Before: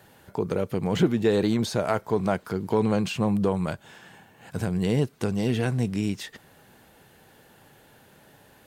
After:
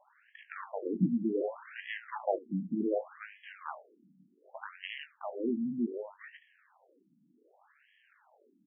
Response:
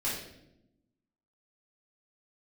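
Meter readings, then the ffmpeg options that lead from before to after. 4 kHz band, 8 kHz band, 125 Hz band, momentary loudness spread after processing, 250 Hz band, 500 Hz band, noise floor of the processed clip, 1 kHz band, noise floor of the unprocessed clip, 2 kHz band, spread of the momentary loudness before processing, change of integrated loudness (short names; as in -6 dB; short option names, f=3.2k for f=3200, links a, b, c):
-14.0 dB, under -35 dB, -16.5 dB, 16 LU, -9.0 dB, -10.5 dB, -69 dBFS, -9.5 dB, -56 dBFS, -7.5 dB, 10 LU, -10.0 dB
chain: -filter_complex "[0:a]highpass=64,asplit=2[a][b];[b]adelay=90,highpass=300,lowpass=3.4k,asoftclip=type=hard:threshold=-17.5dB,volume=-19dB[c];[a][c]amix=inputs=2:normalize=0,aeval=exprs='max(val(0),0)':c=same,asplit=2[d][e];[e]aecho=0:1:21|74:0.376|0.141[f];[d][f]amix=inputs=2:normalize=0,afftfilt=real='re*between(b*sr/1024,210*pow(2400/210,0.5+0.5*sin(2*PI*0.66*pts/sr))/1.41,210*pow(2400/210,0.5+0.5*sin(2*PI*0.66*pts/sr))*1.41)':imag='im*between(b*sr/1024,210*pow(2400/210,0.5+0.5*sin(2*PI*0.66*pts/sr))/1.41,210*pow(2400/210,0.5+0.5*sin(2*PI*0.66*pts/sr))*1.41)':win_size=1024:overlap=0.75"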